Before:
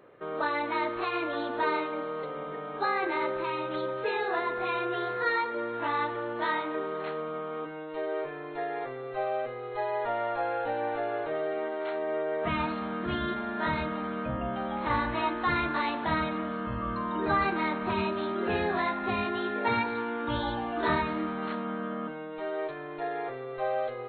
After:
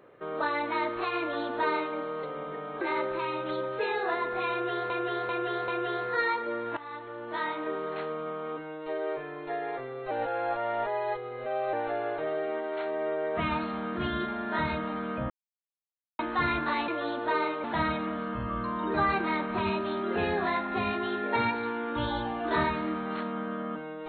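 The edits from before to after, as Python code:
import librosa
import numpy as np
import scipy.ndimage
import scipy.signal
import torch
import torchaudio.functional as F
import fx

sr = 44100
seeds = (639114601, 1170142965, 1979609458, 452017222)

y = fx.edit(x, sr, fx.duplicate(start_s=1.2, length_s=0.76, to_s=15.96),
    fx.cut(start_s=2.81, length_s=0.25),
    fx.repeat(start_s=4.76, length_s=0.39, count=4),
    fx.fade_in_from(start_s=5.85, length_s=0.97, floor_db=-17.0),
    fx.reverse_span(start_s=9.19, length_s=1.62),
    fx.silence(start_s=14.38, length_s=0.89), tone=tone)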